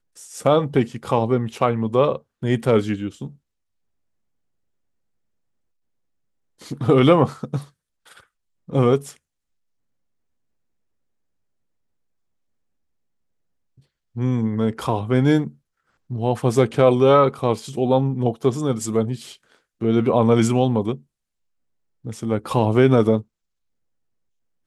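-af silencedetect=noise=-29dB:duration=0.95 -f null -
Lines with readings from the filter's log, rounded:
silence_start: 3.27
silence_end: 6.67 | silence_duration: 3.39
silence_start: 7.62
silence_end: 8.70 | silence_duration: 1.08
silence_start: 9.10
silence_end: 14.17 | silence_duration: 5.06
silence_start: 20.96
silence_end: 22.05 | silence_duration: 1.10
silence_start: 23.21
silence_end: 24.66 | silence_duration: 1.46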